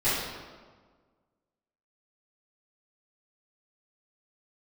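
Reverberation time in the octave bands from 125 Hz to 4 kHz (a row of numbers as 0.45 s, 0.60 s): 1.6 s, 1.7 s, 1.6 s, 1.5 s, 1.2 s, 1.0 s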